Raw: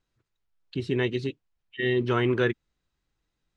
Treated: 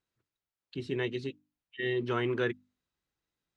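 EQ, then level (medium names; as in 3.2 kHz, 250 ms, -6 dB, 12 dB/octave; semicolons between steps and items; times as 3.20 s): high-pass 120 Hz 6 dB/octave; hum notches 50/100/150/200/250/300 Hz; -5.5 dB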